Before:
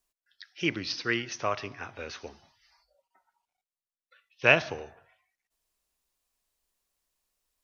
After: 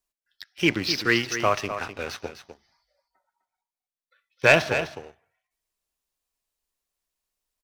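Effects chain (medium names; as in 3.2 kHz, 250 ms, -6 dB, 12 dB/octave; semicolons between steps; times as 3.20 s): 2.25–4.54 s: band-stop 2.8 kHz, Q 5.9; waveshaping leveller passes 2; delay 254 ms -10 dB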